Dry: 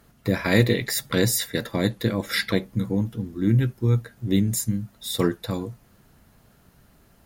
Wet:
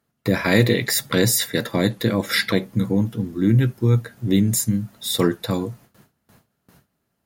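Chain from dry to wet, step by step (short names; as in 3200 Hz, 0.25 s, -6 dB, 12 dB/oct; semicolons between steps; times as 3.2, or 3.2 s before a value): gate with hold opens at -44 dBFS; HPF 95 Hz 12 dB/oct; in parallel at -1 dB: limiter -16.5 dBFS, peak gain reduction 11 dB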